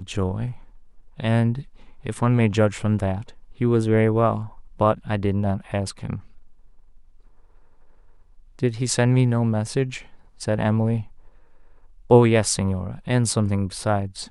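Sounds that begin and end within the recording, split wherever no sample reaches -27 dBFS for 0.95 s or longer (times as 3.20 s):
8.59–11.01 s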